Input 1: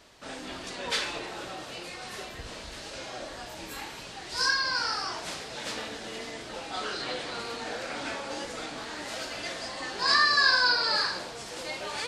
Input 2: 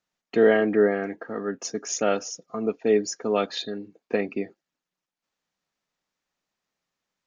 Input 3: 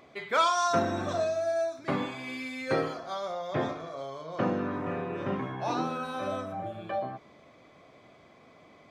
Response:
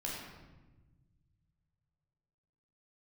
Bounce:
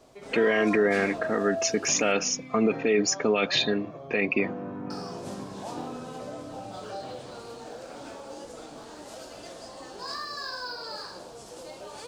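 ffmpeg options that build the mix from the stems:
-filter_complex "[0:a]acrusher=bits=9:mode=log:mix=0:aa=0.000001,volume=-1.5dB,asplit=3[link_01][link_02][link_03];[link_01]atrim=end=2.12,asetpts=PTS-STARTPTS,afade=type=out:start_time=2.116:duration=0.004:curve=hsin[link_04];[link_02]atrim=start=2.12:end=4.9,asetpts=PTS-STARTPTS,volume=0[link_05];[link_03]atrim=start=4.9,asetpts=PTS-STARTPTS,afade=type=in:duration=0.004:curve=hsin[link_06];[link_04][link_05][link_06]concat=n=3:v=0:a=1[link_07];[1:a]equalizer=frequency=2400:width=1.8:gain=13,dynaudnorm=framelen=690:gausssize=3:maxgain=7.5dB,alimiter=limit=-9.5dB:level=0:latency=1:release=28,volume=1dB[link_08];[2:a]lowpass=frequency=2300:poles=1,volume=-6dB,asplit=2[link_09][link_10];[link_10]volume=-6.5dB[link_11];[link_07][link_09]amix=inputs=2:normalize=0,equalizer=frequency=500:width_type=o:width=1:gain=3,equalizer=frequency=2000:width_type=o:width=1:gain=-12,equalizer=frequency=4000:width_type=o:width=1:gain=-5,acompressor=threshold=-44dB:ratio=1.5,volume=0dB[link_12];[3:a]atrim=start_sample=2205[link_13];[link_11][link_13]afir=irnorm=-1:irlink=0[link_14];[link_08][link_12][link_14]amix=inputs=3:normalize=0,alimiter=limit=-14dB:level=0:latency=1:release=38"

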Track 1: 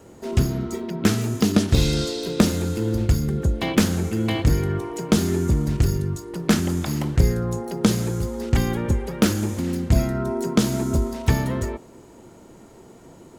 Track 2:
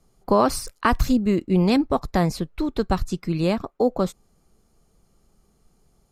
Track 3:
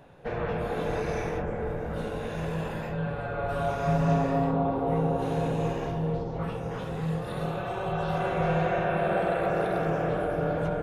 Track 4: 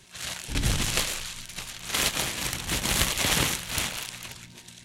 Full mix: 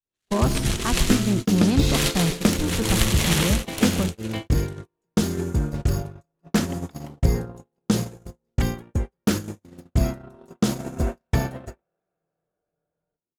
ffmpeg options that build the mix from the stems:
ffmpeg -i stem1.wav -i stem2.wav -i stem3.wav -i stem4.wav -filter_complex "[0:a]adelay=50,volume=-2.5dB[link_01];[1:a]bass=frequency=250:gain=11,treble=frequency=4000:gain=3,acontrast=62,volume=-13.5dB,asplit=3[link_02][link_03][link_04];[link_03]volume=-15dB[link_05];[2:a]adelay=2350,volume=-7.5dB,asplit=2[link_06][link_07];[link_07]volume=-16.5dB[link_08];[3:a]volume=0dB,asplit=2[link_09][link_10];[link_10]volume=-10.5dB[link_11];[link_04]apad=whole_len=581113[link_12];[link_06][link_12]sidechaincompress=threshold=-25dB:ratio=8:attack=16:release=794[link_13];[link_05][link_08][link_11]amix=inputs=3:normalize=0,aecho=0:1:151:1[link_14];[link_01][link_02][link_13][link_09][link_14]amix=inputs=5:normalize=0,agate=range=-48dB:threshold=-23dB:ratio=16:detection=peak" out.wav

